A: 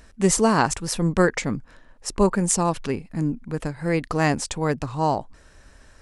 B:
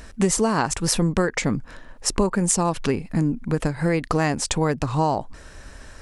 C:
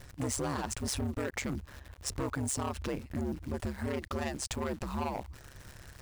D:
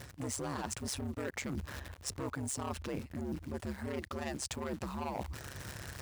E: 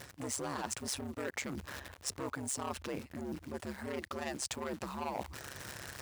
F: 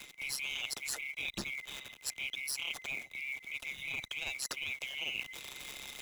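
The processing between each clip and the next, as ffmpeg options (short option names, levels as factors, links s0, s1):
-af "acompressor=threshold=0.0501:ratio=6,volume=2.66"
-af "volume=10.6,asoftclip=hard,volume=0.0944,acrusher=bits=8:dc=4:mix=0:aa=0.000001,aeval=exprs='val(0)*sin(2*PI*68*n/s)':c=same,volume=0.447"
-af "highpass=69,areverse,acompressor=threshold=0.00708:ratio=6,areverse,volume=2.24"
-af "lowshelf=f=170:g=-11,volume=1.19"
-filter_complex "[0:a]afftfilt=real='real(if(lt(b,920),b+92*(1-2*mod(floor(b/92),2)),b),0)':imag='imag(if(lt(b,920),b+92*(1-2*mod(floor(b/92),2)),b),0)':win_size=2048:overlap=0.75,acrossover=split=220|1200|2300[s0][s1][s2][s3];[s2]acrusher=bits=4:mode=log:mix=0:aa=0.000001[s4];[s0][s1][s4][s3]amix=inputs=4:normalize=0"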